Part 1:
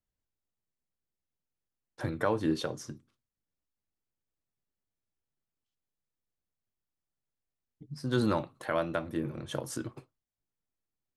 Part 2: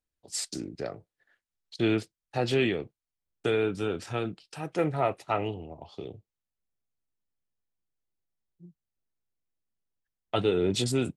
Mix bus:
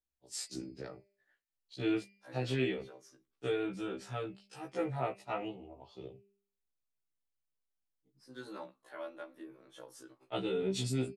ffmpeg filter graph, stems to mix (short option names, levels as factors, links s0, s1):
-filter_complex "[0:a]highpass=340,adelay=250,volume=0.251[s0];[1:a]bandreject=f=199.1:t=h:w=4,bandreject=f=398.2:t=h:w=4,bandreject=f=597.3:t=h:w=4,bandreject=f=796.4:t=h:w=4,bandreject=f=995.5:t=h:w=4,bandreject=f=1194.6:t=h:w=4,bandreject=f=1393.7:t=h:w=4,bandreject=f=1592.8:t=h:w=4,bandreject=f=1791.9:t=h:w=4,bandreject=f=1991:t=h:w=4,bandreject=f=2190.1:t=h:w=4,bandreject=f=2389.2:t=h:w=4,bandreject=f=2588.3:t=h:w=4,bandreject=f=2787.4:t=h:w=4,bandreject=f=2986.5:t=h:w=4,bandreject=f=3185.6:t=h:w=4,bandreject=f=3384.7:t=h:w=4,bandreject=f=3583.8:t=h:w=4,bandreject=f=3782.9:t=h:w=4,bandreject=f=3982:t=h:w=4,bandreject=f=4181.1:t=h:w=4,bandreject=f=4380.2:t=h:w=4,bandreject=f=4579.3:t=h:w=4,bandreject=f=4778.4:t=h:w=4,bandreject=f=4977.5:t=h:w=4,volume=0.531,asplit=2[s1][s2];[s2]apad=whole_len=503418[s3];[s0][s3]sidechaincompress=threshold=0.00398:ratio=8:attack=16:release=166[s4];[s4][s1]amix=inputs=2:normalize=0,afftfilt=real='re*1.73*eq(mod(b,3),0)':imag='im*1.73*eq(mod(b,3),0)':win_size=2048:overlap=0.75"